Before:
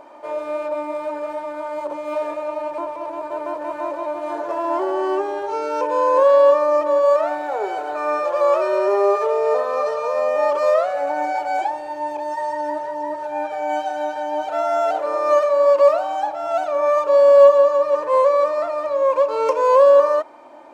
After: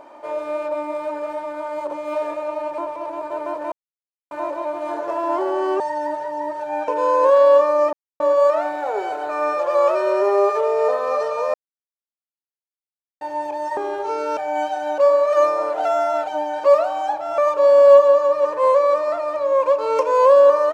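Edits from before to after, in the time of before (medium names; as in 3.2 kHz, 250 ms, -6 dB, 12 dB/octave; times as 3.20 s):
3.72 s: insert silence 0.59 s
5.21–5.81 s: swap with 12.43–13.51 s
6.86 s: insert silence 0.27 s
10.20–11.87 s: mute
14.12–15.78 s: reverse
16.52–16.88 s: delete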